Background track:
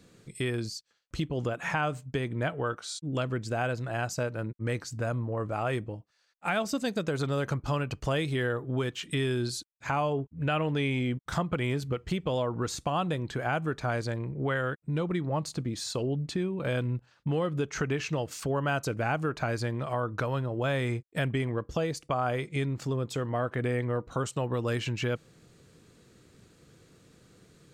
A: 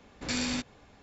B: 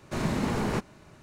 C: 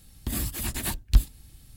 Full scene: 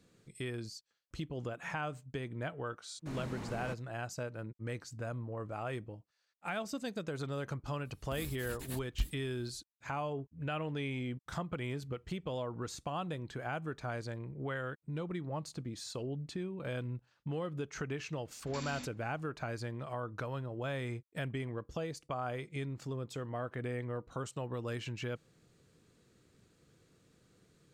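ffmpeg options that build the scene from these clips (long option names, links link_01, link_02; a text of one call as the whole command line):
ffmpeg -i bed.wav -i cue0.wav -i cue1.wav -i cue2.wav -filter_complex "[0:a]volume=-9dB[link_01];[2:a]agate=range=-33dB:threshold=-43dB:ratio=3:release=100:detection=peak,atrim=end=1.22,asetpts=PTS-STARTPTS,volume=-15dB,afade=type=in:duration=0.004:curve=hsin,afade=type=out:start_time=1.216:duration=0.004:curve=hsin,adelay=2940[link_02];[3:a]atrim=end=1.76,asetpts=PTS-STARTPTS,volume=-15.5dB,afade=type=in:duration=0.004:curve=hsin,afade=type=out:start_time=1.756:duration=0.004:curve=hsin,adelay=7850[link_03];[1:a]atrim=end=1.02,asetpts=PTS-STARTPTS,volume=-13.5dB,afade=type=in:duration=0.004:curve=hsin,afade=type=out:start_time=1.016:duration=0.004:curve=hsin,adelay=18250[link_04];[link_01][link_02][link_03][link_04]amix=inputs=4:normalize=0" out.wav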